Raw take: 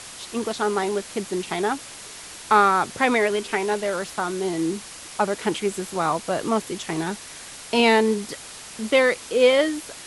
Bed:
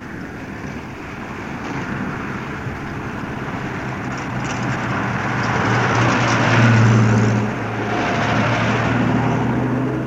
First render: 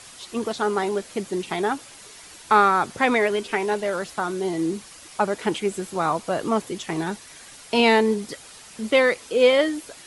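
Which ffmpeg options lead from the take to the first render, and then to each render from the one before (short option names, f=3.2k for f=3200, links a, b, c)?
-af "afftdn=nr=7:nf=-40"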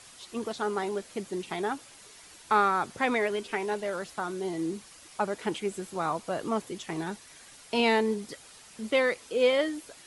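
-af "volume=-7dB"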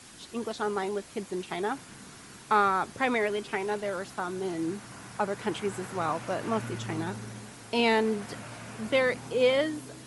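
-filter_complex "[1:a]volume=-25.5dB[a];[0:a][a]amix=inputs=2:normalize=0"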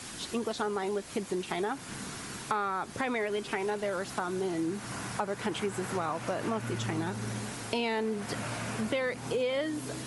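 -filter_complex "[0:a]asplit=2[a][b];[b]alimiter=limit=-21.5dB:level=0:latency=1:release=93,volume=2.5dB[c];[a][c]amix=inputs=2:normalize=0,acompressor=threshold=-30dB:ratio=4"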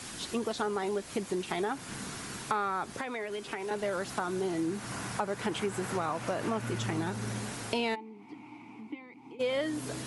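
-filter_complex "[0:a]asettb=1/sr,asplit=3[a][b][c];[a]atrim=end=2.934[d];[b]atrim=start=2.93:end=3.71,asetpts=PTS-STARTPTS,afade=t=in:d=0.004:c=qsin,afade=t=out:st=0.776:d=0.004:c=qsin,acrossover=split=280|2000[e][f][g];[e]acompressor=threshold=-49dB:ratio=4[h];[f]acompressor=threshold=-36dB:ratio=4[i];[g]acompressor=threshold=-44dB:ratio=4[j];[h][i][j]amix=inputs=3:normalize=0[k];[c]atrim=start=3.706[l];[d][k]acrossfade=d=0.004:c1=hsin:c2=qsin[m];[m][l]acrossfade=d=0.004:c1=qsin:c2=hsin,asplit=3[n][o][p];[n]afade=t=out:st=7.94:d=0.02[q];[o]asplit=3[r][s][t];[r]bandpass=f=300:t=q:w=8,volume=0dB[u];[s]bandpass=f=870:t=q:w=8,volume=-6dB[v];[t]bandpass=f=2.24k:t=q:w=8,volume=-9dB[w];[u][v][w]amix=inputs=3:normalize=0,afade=t=in:st=7.94:d=0.02,afade=t=out:st=9.39:d=0.02[x];[p]afade=t=in:st=9.39:d=0.02[y];[q][x][y]amix=inputs=3:normalize=0"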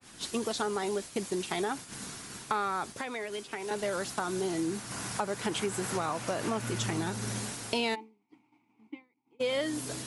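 -af "agate=range=-33dB:threshold=-35dB:ratio=3:detection=peak,adynamicequalizer=threshold=0.00282:dfrequency=3300:dqfactor=0.7:tfrequency=3300:tqfactor=0.7:attack=5:release=100:ratio=0.375:range=3.5:mode=boostabove:tftype=highshelf"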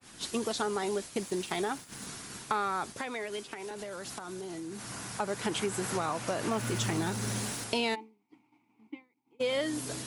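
-filter_complex "[0:a]asettb=1/sr,asplit=3[a][b][c];[a]atrim=end=1.184[d];[b]atrim=start=1.18:end=2.07,asetpts=PTS-STARTPTS,afade=t=in:d=0.004:c=qsin,afade=t=out:st=0.886:d=0.004:c=qsin,aeval=exprs='sgn(val(0))*max(abs(val(0))-0.00188,0)':c=same[e];[c]atrim=start=2.066[f];[d][e]acrossfade=d=0.004:c1=hsin:c2=qsin[g];[g][f]acrossfade=d=0.004:c1=qsin:c2=hsin,asettb=1/sr,asplit=3[h][i][j];[h]atrim=end=3.534[k];[i]atrim=start=3.53:end=5.2,asetpts=PTS-STARTPTS,afade=t=in:d=0.004:c=qsin,afade=t=out:st=1.666:d=0.004:c=qsin,acompressor=threshold=-36dB:ratio=12:attack=3.2:release=140:knee=1:detection=peak[l];[j]atrim=start=5.196[m];[k][l]acrossfade=d=0.004:c1=hsin:c2=qsin[n];[n][m]acrossfade=d=0.004:c1=qsin:c2=hsin,asettb=1/sr,asplit=3[o][p][q];[o]atrim=end=6.514[r];[p]atrim=start=6.51:end=7.64,asetpts=PTS-STARTPTS,afade=t=in:d=0.004:c=qsin,afade=t=out:st=1.126:d=0.004:c=qsin,aeval=exprs='val(0)+0.5*0.00841*sgn(val(0))':c=same[s];[q]atrim=start=7.636[t];[r][s]acrossfade=d=0.004:c1=hsin:c2=qsin[u];[u][t]acrossfade=d=0.004:c1=qsin:c2=hsin"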